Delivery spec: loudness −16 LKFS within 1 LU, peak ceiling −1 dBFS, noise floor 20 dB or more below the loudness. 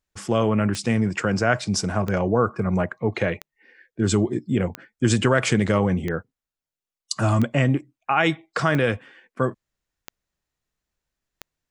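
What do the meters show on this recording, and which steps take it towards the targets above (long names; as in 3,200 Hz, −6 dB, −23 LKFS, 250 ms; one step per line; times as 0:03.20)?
number of clicks 9; integrated loudness −23.0 LKFS; sample peak −6.0 dBFS; target loudness −16.0 LKFS
→ click removal
level +7 dB
brickwall limiter −1 dBFS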